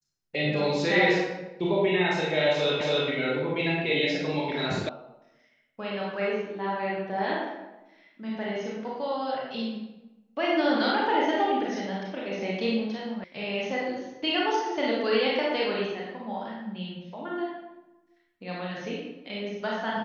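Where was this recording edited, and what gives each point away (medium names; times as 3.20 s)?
2.81 s: repeat of the last 0.28 s
4.89 s: sound stops dead
13.24 s: sound stops dead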